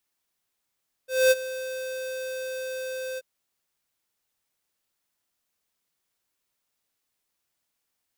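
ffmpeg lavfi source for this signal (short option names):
-f lavfi -i "aevalsrc='0.15*(2*lt(mod(518*t,1),0.5)-1)':d=2.133:s=44100,afade=t=in:d=0.231,afade=t=out:st=0.231:d=0.032:silence=0.15,afade=t=out:st=2.1:d=0.033"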